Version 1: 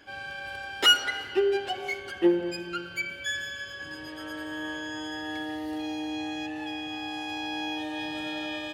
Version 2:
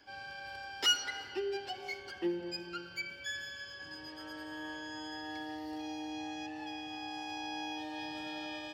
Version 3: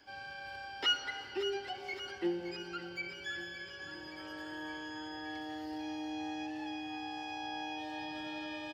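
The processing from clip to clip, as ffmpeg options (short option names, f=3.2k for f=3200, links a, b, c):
-filter_complex "[0:a]superequalizer=9b=1.58:14b=2.51:16b=0.631,acrossover=split=330|1600|3100[a][b][c][d];[b]alimiter=level_in=2.5dB:limit=-24dB:level=0:latency=1:release=351,volume=-2.5dB[e];[a][e][c][d]amix=inputs=4:normalize=0,volume=-8.5dB"
-filter_complex "[0:a]aecho=1:1:568|1136|1704|2272|2840|3408|3976:0.251|0.148|0.0874|0.0516|0.0304|0.018|0.0106,acrossover=split=3900[a][b];[b]acompressor=threshold=-58dB:ratio=4:attack=1:release=60[c];[a][c]amix=inputs=2:normalize=0"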